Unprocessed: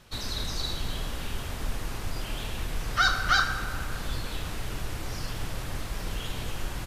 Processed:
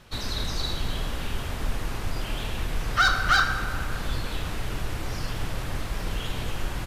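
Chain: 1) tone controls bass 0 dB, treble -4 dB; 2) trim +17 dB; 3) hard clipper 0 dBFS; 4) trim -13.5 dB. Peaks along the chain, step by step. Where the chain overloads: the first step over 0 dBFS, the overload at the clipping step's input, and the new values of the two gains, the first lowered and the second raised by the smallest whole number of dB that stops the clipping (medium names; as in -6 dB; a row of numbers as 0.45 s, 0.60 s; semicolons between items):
-11.0 dBFS, +6.0 dBFS, 0.0 dBFS, -13.5 dBFS; step 2, 6.0 dB; step 2 +11 dB, step 4 -7.5 dB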